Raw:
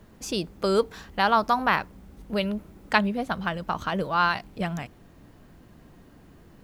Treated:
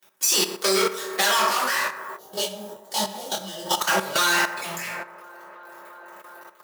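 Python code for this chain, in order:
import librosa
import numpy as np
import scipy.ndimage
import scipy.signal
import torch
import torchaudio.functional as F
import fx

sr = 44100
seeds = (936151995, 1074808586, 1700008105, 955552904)

y = fx.spec_dropout(x, sr, seeds[0], share_pct=25)
y = fx.leveller(y, sr, passes=5)
y = scipy.signal.sosfilt(scipy.signal.butter(2, 98.0, 'highpass', fs=sr, output='sos'), y)
y = np.diff(y, prepend=0.0)
y = fx.echo_wet_bandpass(y, sr, ms=343, feedback_pct=77, hz=680.0, wet_db=-16.5)
y = fx.rev_fdn(y, sr, rt60_s=0.99, lf_ratio=0.75, hf_ratio=0.4, size_ms=16.0, drr_db=-10.0)
y = fx.spec_box(y, sr, start_s=2.17, length_s=1.63, low_hz=940.0, high_hz=2800.0, gain_db=-13)
y = fx.high_shelf(y, sr, hz=6500.0, db=-3.5)
y = fx.level_steps(y, sr, step_db=12)
y = fx.detune_double(y, sr, cents=46, at=(1.48, 3.65), fade=0.02)
y = y * librosa.db_to_amplitude(4.0)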